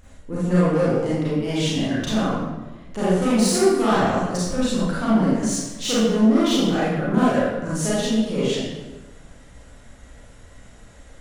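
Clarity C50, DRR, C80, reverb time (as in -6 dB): -4.0 dB, -10.0 dB, 1.0 dB, 1.2 s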